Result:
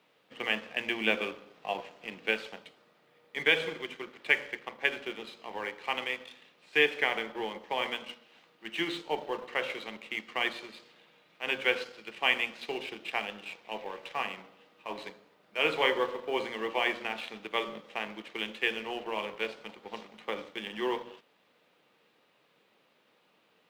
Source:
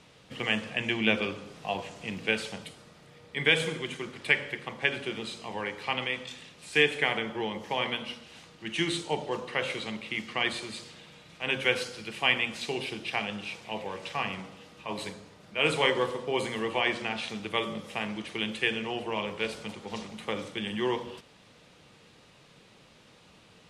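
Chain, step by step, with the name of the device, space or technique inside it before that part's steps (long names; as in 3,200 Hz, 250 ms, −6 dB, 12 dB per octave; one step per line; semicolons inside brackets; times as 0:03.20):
phone line with mismatched companding (band-pass filter 300–3,400 Hz; mu-law and A-law mismatch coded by A)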